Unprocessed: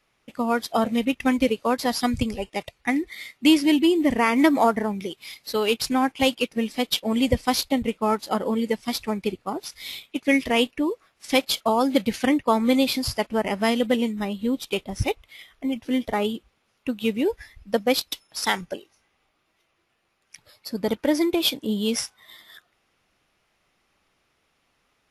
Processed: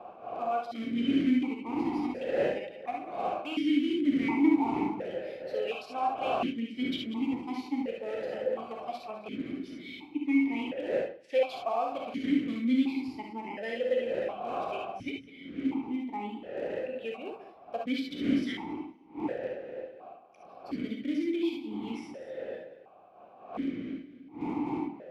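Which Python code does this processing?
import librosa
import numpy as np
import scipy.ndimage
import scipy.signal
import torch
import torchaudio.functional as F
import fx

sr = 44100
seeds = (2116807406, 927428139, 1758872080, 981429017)

p1 = fx.reverse_delay_fb(x, sr, ms=102, feedback_pct=41, wet_db=-12)
p2 = fx.dmg_wind(p1, sr, seeds[0], corner_hz=540.0, level_db=-25.0)
p3 = (np.mod(10.0 ** (14.5 / 20.0) * p2 + 1.0, 2.0) - 1.0) / 10.0 ** (14.5 / 20.0)
p4 = p2 + F.gain(torch.from_numpy(p3), -11.0).numpy()
p5 = fx.rev_gated(p4, sr, seeds[1], gate_ms=90, shape='rising', drr_db=0.0)
p6 = fx.vowel_held(p5, sr, hz=1.4)
y = F.gain(torch.from_numpy(p6), -4.5).numpy()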